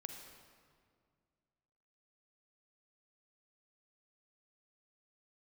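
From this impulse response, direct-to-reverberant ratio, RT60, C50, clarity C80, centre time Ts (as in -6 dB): 4.0 dB, 2.1 s, 4.5 dB, 5.5 dB, 51 ms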